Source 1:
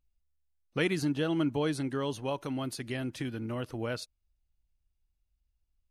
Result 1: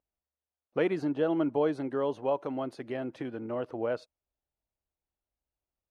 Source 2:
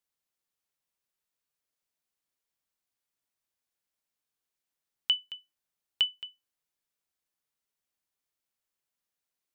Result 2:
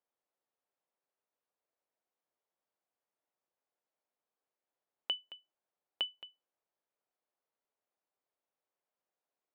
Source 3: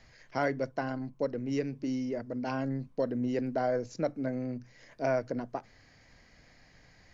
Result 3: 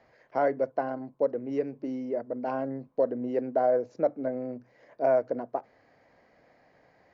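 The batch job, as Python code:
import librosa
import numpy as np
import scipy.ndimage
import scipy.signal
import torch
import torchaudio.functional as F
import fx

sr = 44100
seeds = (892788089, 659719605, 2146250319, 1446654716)

y = fx.bandpass_q(x, sr, hz=600.0, q=1.2)
y = y * 10.0 ** (6.5 / 20.0)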